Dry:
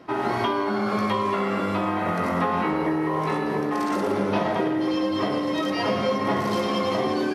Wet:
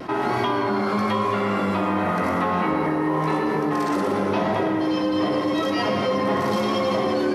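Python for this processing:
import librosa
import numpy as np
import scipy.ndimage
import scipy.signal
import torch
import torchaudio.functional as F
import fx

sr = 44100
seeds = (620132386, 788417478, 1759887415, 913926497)

y = fx.vibrato(x, sr, rate_hz=0.93, depth_cents=30.0)
y = fx.rev_plate(y, sr, seeds[0], rt60_s=1.9, hf_ratio=0.25, predelay_ms=115, drr_db=7.0)
y = fx.env_flatten(y, sr, amount_pct=50)
y = F.gain(torch.from_numpy(y), -1.0).numpy()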